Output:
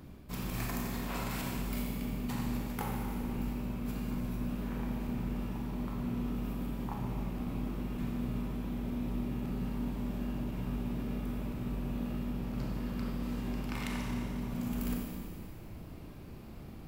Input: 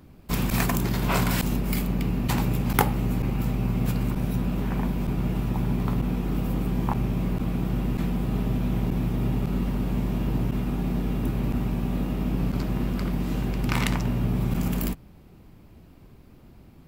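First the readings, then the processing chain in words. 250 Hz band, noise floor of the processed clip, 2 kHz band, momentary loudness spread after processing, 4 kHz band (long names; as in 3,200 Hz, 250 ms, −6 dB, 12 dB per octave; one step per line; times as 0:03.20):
−8.5 dB, −47 dBFS, −11.0 dB, 4 LU, −10.5 dB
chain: reversed playback
downward compressor 8 to 1, threshold −36 dBFS, peak gain reduction 21.5 dB
reversed playback
four-comb reverb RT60 2.1 s, combs from 29 ms, DRR −1.5 dB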